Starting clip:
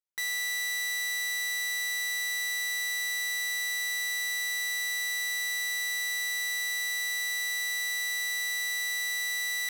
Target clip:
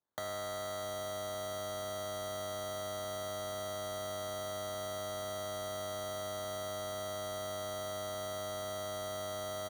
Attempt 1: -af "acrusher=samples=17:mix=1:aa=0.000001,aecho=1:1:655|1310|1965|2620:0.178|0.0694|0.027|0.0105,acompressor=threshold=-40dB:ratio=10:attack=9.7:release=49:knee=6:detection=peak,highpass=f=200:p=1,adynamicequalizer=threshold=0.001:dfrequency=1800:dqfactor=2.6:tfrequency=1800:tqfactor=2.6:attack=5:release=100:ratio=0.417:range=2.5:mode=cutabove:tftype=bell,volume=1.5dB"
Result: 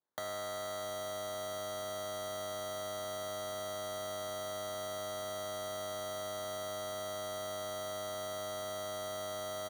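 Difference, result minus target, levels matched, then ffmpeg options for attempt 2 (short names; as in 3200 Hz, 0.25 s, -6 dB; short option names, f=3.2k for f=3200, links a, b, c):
125 Hz band -4.0 dB
-af "acrusher=samples=17:mix=1:aa=0.000001,aecho=1:1:655|1310|1965|2620:0.178|0.0694|0.027|0.0105,acompressor=threshold=-40dB:ratio=10:attack=9.7:release=49:knee=6:detection=peak,highpass=f=88:p=1,adynamicequalizer=threshold=0.001:dfrequency=1800:dqfactor=2.6:tfrequency=1800:tqfactor=2.6:attack=5:release=100:ratio=0.417:range=2.5:mode=cutabove:tftype=bell,volume=1.5dB"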